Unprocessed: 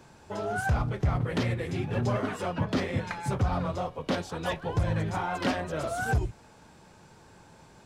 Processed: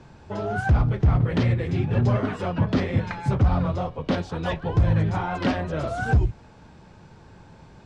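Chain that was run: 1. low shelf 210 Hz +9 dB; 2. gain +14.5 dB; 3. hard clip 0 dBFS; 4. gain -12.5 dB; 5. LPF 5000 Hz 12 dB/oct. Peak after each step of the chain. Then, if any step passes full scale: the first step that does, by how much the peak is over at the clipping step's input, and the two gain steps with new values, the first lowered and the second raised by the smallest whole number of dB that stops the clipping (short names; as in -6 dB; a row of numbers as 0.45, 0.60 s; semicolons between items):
-8.5, +6.0, 0.0, -12.5, -12.5 dBFS; step 2, 6.0 dB; step 2 +8.5 dB, step 4 -6.5 dB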